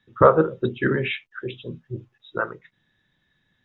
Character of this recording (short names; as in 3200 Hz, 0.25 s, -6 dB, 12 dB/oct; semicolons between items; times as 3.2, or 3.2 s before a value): noise floor -71 dBFS; spectral tilt -5.0 dB/oct